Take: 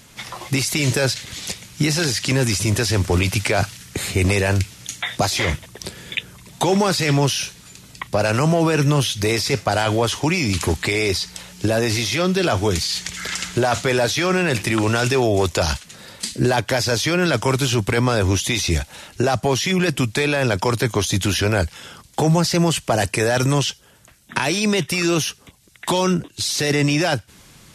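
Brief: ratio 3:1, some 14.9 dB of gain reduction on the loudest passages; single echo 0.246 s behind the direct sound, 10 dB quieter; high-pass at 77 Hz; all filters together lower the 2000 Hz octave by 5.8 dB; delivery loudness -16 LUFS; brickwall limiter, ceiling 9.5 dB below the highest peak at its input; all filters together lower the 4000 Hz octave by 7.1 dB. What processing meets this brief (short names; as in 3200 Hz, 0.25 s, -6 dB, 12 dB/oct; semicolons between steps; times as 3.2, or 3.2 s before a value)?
HPF 77 Hz; bell 2000 Hz -5.5 dB; bell 4000 Hz -8 dB; compressor 3:1, threshold -35 dBFS; limiter -27.5 dBFS; echo 0.246 s -10 dB; gain +20.5 dB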